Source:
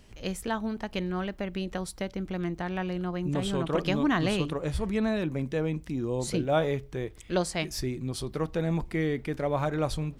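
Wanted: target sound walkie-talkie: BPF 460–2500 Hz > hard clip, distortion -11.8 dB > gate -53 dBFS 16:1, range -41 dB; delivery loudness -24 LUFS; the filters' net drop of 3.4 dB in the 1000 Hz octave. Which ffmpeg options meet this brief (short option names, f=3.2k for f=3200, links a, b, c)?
-af "highpass=460,lowpass=2.5k,equalizer=f=1k:t=o:g=-4,asoftclip=type=hard:threshold=-28dB,agate=range=-41dB:threshold=-53dB:ratio=16,volume=14dB"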